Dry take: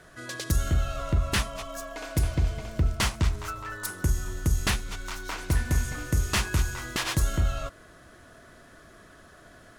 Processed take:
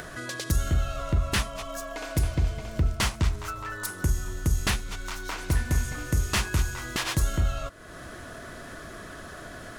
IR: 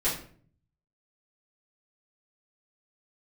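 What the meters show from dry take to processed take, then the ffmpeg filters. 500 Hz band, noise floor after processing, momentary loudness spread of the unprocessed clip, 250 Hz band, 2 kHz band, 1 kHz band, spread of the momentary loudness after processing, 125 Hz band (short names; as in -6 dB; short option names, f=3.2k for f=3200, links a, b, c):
+1.0 dB, -42 dBFS, 10 LU, +0.5 dB, +0.5 dB, +0.5 dB, 15 LU, 0.0 dB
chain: -af "acompressor=mode=upward:threshold=-30dB:ratio=2.5"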